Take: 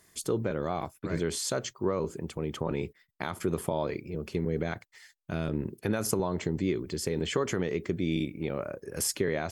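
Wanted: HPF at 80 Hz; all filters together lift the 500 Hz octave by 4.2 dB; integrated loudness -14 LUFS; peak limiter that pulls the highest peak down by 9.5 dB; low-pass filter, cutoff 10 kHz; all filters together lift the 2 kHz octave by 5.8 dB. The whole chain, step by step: high-pass 80 Hz; low-pass 10 kHz; peaking EQ 500 Hz +5 dB; peaking EQ 2 kHz +7 dB; trim +18 dB; peak limiter -1.5 dBFS

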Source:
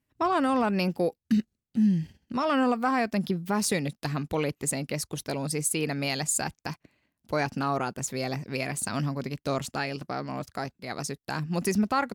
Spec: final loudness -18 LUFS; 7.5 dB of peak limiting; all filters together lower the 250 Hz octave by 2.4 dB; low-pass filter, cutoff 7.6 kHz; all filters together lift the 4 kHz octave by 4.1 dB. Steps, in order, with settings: low-pass 7.6 kHz; peaking EQ 250 Hz -3 dB; peaking EQ 4 kHz +5.5 dB; trim +13.5 dB; peak limiter -7 dBFS

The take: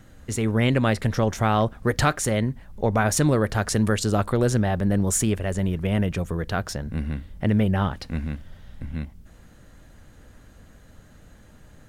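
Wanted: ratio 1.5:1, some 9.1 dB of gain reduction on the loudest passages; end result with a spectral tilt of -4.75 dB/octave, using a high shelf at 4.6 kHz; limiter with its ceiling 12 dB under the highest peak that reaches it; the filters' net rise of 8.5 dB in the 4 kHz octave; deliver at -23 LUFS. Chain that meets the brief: peaking EQ 4 kHz +9 dB; treble shelf 4.6 kHz +4 dB; compression 1.5:1, threshold -42 dBFS; trim +13.5 dB; peak limiter -13 dBFS

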